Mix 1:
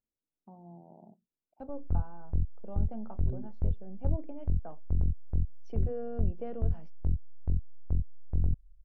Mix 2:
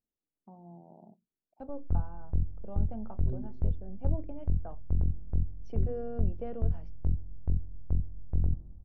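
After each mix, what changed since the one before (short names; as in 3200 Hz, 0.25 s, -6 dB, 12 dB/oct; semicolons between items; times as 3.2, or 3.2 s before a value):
reverb: on, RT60 1.8 s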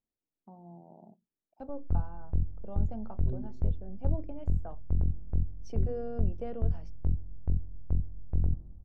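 master: remove air absorption 210 m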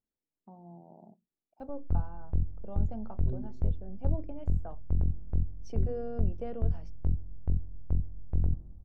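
background: remove air absorption 200 m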